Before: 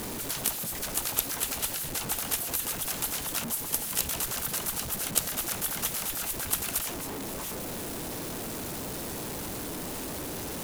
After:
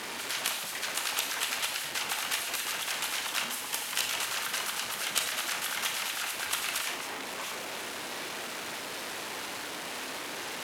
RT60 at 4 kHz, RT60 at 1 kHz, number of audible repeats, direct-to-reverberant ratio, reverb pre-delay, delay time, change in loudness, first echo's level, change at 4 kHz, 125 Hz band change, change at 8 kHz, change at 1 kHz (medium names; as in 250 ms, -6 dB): 0.55 s, 0.60 s, no echo, 4.5 dB, 23 ms, no echo, -1.5 dB, no echo, +4.5 dB, -15.0 dB, -3.0 dB, +2.5 dB